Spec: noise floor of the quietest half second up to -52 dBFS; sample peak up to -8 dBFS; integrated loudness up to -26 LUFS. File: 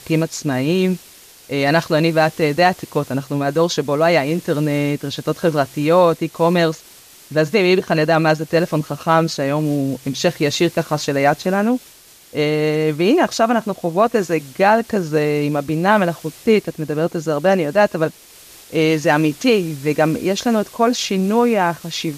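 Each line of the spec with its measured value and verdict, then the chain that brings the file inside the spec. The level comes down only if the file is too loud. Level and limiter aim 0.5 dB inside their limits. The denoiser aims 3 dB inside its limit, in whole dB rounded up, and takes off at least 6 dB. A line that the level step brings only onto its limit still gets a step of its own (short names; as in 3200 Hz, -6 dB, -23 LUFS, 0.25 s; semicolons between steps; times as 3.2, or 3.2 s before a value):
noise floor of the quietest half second -46 dBFS: fail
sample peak -3.0 dBFS: fail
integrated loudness -18.0 LUFS: fail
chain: gain -8.5 dB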